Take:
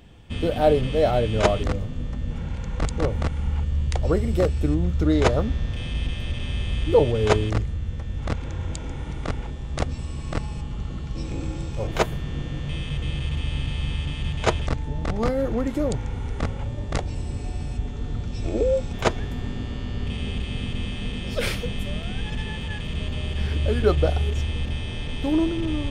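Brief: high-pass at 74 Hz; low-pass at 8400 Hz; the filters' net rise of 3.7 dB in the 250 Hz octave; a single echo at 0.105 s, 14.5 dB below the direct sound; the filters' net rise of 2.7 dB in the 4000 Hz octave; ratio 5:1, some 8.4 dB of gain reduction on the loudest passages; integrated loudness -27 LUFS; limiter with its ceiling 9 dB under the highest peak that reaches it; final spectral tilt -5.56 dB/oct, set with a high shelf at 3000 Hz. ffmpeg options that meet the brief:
-af "highpass=74,lowpass=8.4k,equalizer=f=250:t=o:g=5,highshelf=f=3k:g=-3,equalizer=f=4k:t=o:g=6,acompressor=threshold=-21dB:ratio=5,alimiter=limit=-19dB:level=0:latency=1,aecho=1:1:105:0.188,volume=3dB"

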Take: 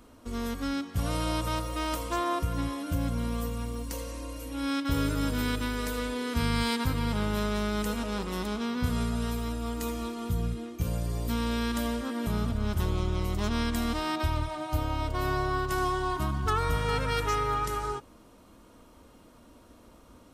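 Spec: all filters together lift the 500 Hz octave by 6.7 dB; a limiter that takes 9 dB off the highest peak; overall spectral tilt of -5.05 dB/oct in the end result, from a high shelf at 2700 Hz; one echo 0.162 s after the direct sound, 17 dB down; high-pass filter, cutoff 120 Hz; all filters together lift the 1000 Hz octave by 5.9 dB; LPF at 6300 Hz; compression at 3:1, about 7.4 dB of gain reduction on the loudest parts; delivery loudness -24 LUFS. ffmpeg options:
-af "highpass=120,lowpass=6.3k,equalizer=f=500:t=o:g=7,equalizer=f=1k:t=o:g=6,highshelf=f=2.7k:g=-3,acompressor=threshold=-30dB:ratio=3,alimiter=level_in=3.5dB:limit=-24dB:level=0:latency=1,volume=-3.5dB,aecho=1:1:162:0.141,volume=12dB"

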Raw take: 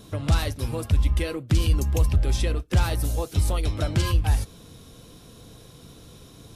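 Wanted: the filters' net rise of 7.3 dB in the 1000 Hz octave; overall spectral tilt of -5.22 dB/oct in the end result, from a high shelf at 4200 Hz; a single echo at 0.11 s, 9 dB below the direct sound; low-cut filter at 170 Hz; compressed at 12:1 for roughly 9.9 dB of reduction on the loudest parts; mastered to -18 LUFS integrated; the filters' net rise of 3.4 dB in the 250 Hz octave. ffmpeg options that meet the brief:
-af "highpass=170,equalizer=f=250:t=o:g=6,equalizer=f=1k:t=o:g=9,highshelf=f=4.2k:g=-4.5,acompressor=threshold=-29dB:ratio=12,aecho=1:1:110:0.355,volume=16dB"

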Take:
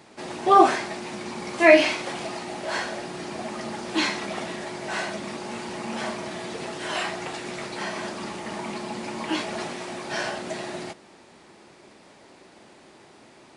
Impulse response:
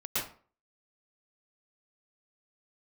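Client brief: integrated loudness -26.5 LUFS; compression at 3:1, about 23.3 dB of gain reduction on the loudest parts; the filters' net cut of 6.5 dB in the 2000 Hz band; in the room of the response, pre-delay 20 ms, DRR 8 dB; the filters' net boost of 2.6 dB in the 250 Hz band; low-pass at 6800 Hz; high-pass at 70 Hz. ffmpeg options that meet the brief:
-filter_complex "[0:a]highpass=70,lowpass=6.8k,equalizer=f=250:t=o:g=4,equalizer=f=2k:t=o:g=-8,acompressor=threshold=-43dB:ratio=3,asplit=2[a][b];[1:a]atrim=start_sample=2205,adelay=20[c];[b][c]afir=irnorm=-1:irlink=0,volume=-14.5dB[d];[a][d]amix=inputs=2:normalize=0,volume=15.5dB"

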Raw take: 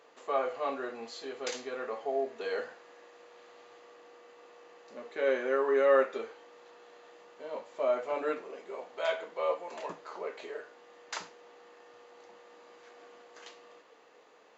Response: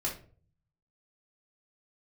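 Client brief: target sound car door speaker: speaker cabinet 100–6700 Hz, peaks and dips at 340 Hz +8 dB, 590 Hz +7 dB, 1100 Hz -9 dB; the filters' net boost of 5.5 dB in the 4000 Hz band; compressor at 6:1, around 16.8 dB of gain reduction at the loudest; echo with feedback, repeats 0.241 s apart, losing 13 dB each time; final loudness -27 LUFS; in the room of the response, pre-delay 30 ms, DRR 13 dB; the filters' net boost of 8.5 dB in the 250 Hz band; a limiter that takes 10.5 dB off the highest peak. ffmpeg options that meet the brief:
-filter_complex "[0:a]equalizer=f=250:t=o:g=7,equalizer=f=4k:t=o:g=7,acompressor=threshold=-37dB:ratio=6,alimiter=level_in=9.5dB:limit=-24dB:level=0:latency=1,volume=-9.5dB,aecho=1:1:241|482|723:0.224|0.0493|0.0108,asplit=2[a][b];[1:a]atrim=start_sample=2205,adelay=30[c];[b][c]afir=irnorm=-1:irlink=0,volume=-17dB[d];[a][d]amix=inputs=2:normalize=0,highpass=100,equalizer=f=340:t=q:w=4:g=8,equalizer=f=590:t=q:w=4:g=7,equalizer=f=1.1k:t=q:w=4:g=-9,lowpass=f=6.7k:w=0.5412,lowpass=f=6.7k:w=1.3066,volume=15dB"

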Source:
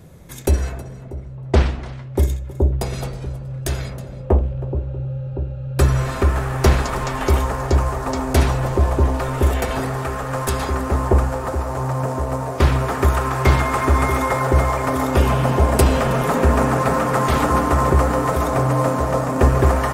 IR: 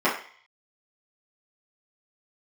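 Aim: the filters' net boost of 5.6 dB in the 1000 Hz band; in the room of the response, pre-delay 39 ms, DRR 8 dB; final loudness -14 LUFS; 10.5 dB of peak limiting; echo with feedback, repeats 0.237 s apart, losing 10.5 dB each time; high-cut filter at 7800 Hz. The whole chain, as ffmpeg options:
-filter_complex "[0:a]lowpass=7.8k,equalizer=f=1k:t=o:g=6.5,alimiter=limit=-10.5dB:level=0:latency=1,aecho=1:1:237|474|711:0.299|0.0896|0.0269,asplit=2[a][b];[1:a]atrim=start_sample=2205,adelay=39[c];[b][c]afir=irnorm=-1:irlink=0,volume=-25dB[d];[a][d]amix=inputs=2:normalize=0,volume=6dB"

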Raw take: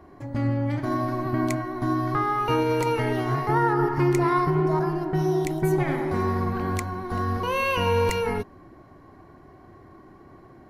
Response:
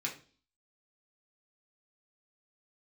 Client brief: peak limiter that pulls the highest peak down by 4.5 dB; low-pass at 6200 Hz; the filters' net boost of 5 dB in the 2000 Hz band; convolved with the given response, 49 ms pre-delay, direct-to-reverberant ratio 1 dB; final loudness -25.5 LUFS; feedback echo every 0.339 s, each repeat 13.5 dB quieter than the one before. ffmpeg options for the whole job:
-filter_complex "[0:a]lowpass=6.2k,equalizer=f=2k:t=o:g=6.5,alimiter=limit=-15dB:level=0:latency=1,aecho=1:1:339|678:0.211|0.0444,asplit=2[a][b];[1:a]atrim=start_sample=2205,adelay=49[c];[b][c]afir=irnorm=-1:irlink=0,volume=-4dB[d];[a][d]amix=inputs=2:normalize=0,volume=-2.5dB"

